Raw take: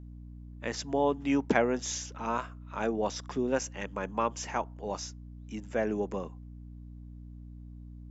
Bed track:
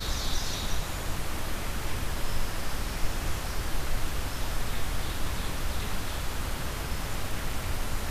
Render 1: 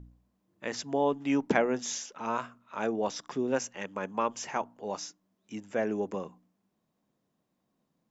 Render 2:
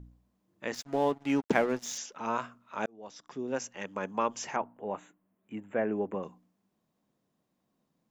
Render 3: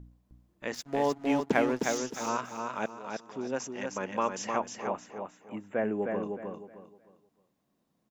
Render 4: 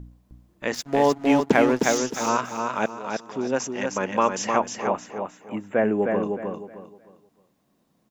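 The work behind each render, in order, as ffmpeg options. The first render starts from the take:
-af "bandreject=f=60:t=h:w=4,bandreject=f=120:t=h:w=4,bandreject=f=180:t=h:w=4,bandreject=f=240:t=h:w=4,bandreject=f=300:t=h:w=4"
-filter_complex "[0:a]asettb=1/sr,asplit=3[s0][s1][s2];[s0]atrim=end=0.744[s3];[s1]atrim=start=0.74:end=1.98,asetpts=PTS-STARTPTS,afade=t=in:d=0.004:c=qsin,afade=t=out:st=1.236:d=0.004:c=qsin,aeval=exprs='sgn(val(0))*max(abs(val(0))-0.00668,0)':c=same[s4];[s2]atrim=start=1.976[s5];[s3][s4]acrossfade=d=0.004:c1=hsin:c2=qsin[s6];[s6][s5]acrossfade=d=0.004:c1=qsin:c2=hsin,asettb=1/sr,asplit=3[s7][s8][s9];[s7]atrim=end=4.564[s10];[s8]atrim=start=4.56:end=6.23,asetpts=PTS-STARTPTS,afade=t=in:d=0.004:c=qsin,afade=t=out:st=1.666:d=0.004:c=qsin,asuperstop=centerf=5200:order=4:qfactor=0.71[s11];[s9]atrim=start=6.226[s12];[s10][s11]acrossfade=d=0.004:c1=hsin:c2=qsin[s13];[s13][s12]acrossfade=d=0.004:c1=qsin:c2=hsin,asplit=2[s14][s15];[s14]atrim=end=2.86,asetpts=PTS-STARTPTS,afade=t=out:st=2.856:d=0.004:c=hsin[s16];[s15]atrim=start=2.86,asetpts=PTS-STARTPTS,afade=t=in:d=1.1[s17];[s16][s17]concat=n=2:v=0:a=1"
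-af "aecho=1:1:309|618|927|1236:0.596|0.173|0.0501|0.0145"
-af "volume=2.66,alimiter=limit=0.708:level=0:latency=1"

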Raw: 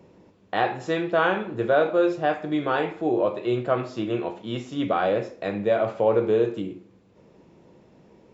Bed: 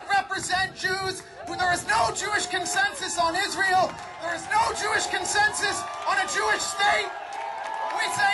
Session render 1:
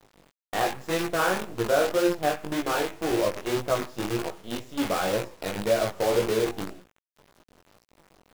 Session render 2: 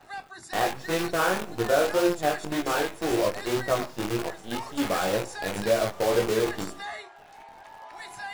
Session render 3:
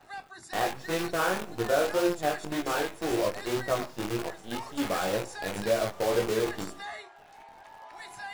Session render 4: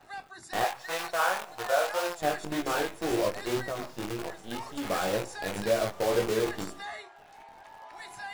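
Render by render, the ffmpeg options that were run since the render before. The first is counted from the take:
-af "acrusher=bits=5:dc=4:mix=0:aa=0.000001,flanger=delay=17:depth=4.5:speed=1.9"
-filter_complex "[1:a]volume=0.168[s0];[0:a][s0]amix=inputs=2:normalize=0"
-af "volume=0.708"
-filter_complex "[0:a]asettb=1/sr,asplit=3[s0][s1][s2];[s0]atrim=end=0.644[s3];[s1]atrim=start=0.64:end=2.22,asetpts=PTS-STARTPTS,afade=t=in:d=0.004:c=qsin,afade=t=out:st=1.576:d=0.004:c=qsin,lowshelf=f=470:t=q:w=1.5:g=-14[s4];[s2]atrim=start=2.216[s5];[s3][s4]acrossfade=d=0.004:c1=hsin:c2=qsin[s6];[s6][s5]acrossfade=d=0.004:c1=qsin:c2=hsin,asettb=1/sr,asplit=3[s7][s8][s9];[s7]atrim=end=3.634[s10];[s8]atrim=start=3.63:end=4.88,asetpts=PTS-STARTPTS,afade=t=in:d=0.004:c=qsin,afade=t=out:st=1.246:d=0.004:c=qsin,acompressor=threshold=0.0316:ratio=4:attack=3.2:release=140:knee=1:detection=peak[s11];[s9]atrim=start=4.876[s12];[s10][s11]acrossfade=d=0.004:c1=hsin:c2=qsin[s13];[s13][s12]acrossfade=d=0.004:c1=qsin:c2=hsin"

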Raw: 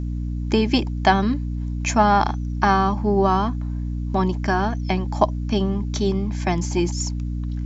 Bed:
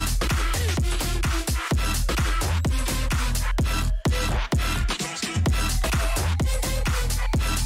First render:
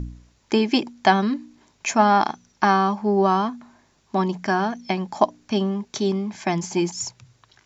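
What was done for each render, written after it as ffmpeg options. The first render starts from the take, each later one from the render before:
-af "bandreject=f=60:t=h:w=4,bandreject=f=120:t=h:w=4,bandreject=f=180:t=h:w=4,bandreject=f=240:t=h:w=4,bandreject=f=300:t=h:w=4"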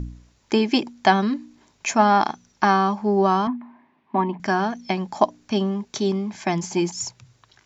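-filter_complex "[0:a]asettb=1/sr,asplit=3[s0][s1][s2];[s0]atrim=end=3.474[s3];[s1]atrim=start=3.47:end=4.4,asetpts=PTS-STARTPTS,afade=t=in:d=0.004:c=qsin,afade=t=out:st=0.926:d=0.004:c=qsin,highpass=210,equalizer=f=250:t=q:w=4:g=9,equalizer=f=490:t=q:w=4:g=-8,equalizer=f=970:t=q:w=4:g=7,equalizer=f=1400:t=q:w=4:g=-7,equalizer=f=2000:t=q:w=4:g=3,lowpass=f=2600:w=0.5412,lowpass=f=2600:w=1.3066[s4];[s2]atrim=start=4.396[s5];[s3][s4]acrossfade=d=0.004:c1=hsin:c2=qsin[s6];[s6][s5]acrossfade=d=0.004:c1=qsin:c2=hsin"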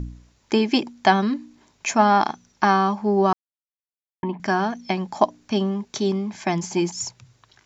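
-filter_complex "[0:a]asplit=3[s0][s1][s2];[s0]atrim=end=3.33,asetpts=PTS-STARTPTS,afade=t=out:st=3.326:d=0.004:c=hsin[s3];[s1]atrim=start=3.33:end=4.23,asetpts=PTS-STARTPTS,volume=0[s4];[s2]atrim=start=4.23,asetpts=PTS-STARTPTS,afade=t=in:d=0.004:c=hsin[s5];[s3][s4][s5]concat=n=3:v=0:a=1"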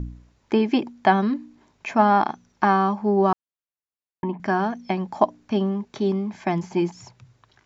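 -filter_complex "[0:a]acrossover=split=4200[s0][s1];[s1]acompressor=threshold=0.00631:ratio=4:attack=1:release=60[s2];[s0][s2]amix=inputs=2:normalize=0,highshelf=f=3200:g=-10.5"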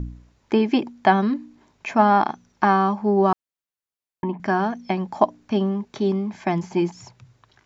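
-af "volume=1.12"

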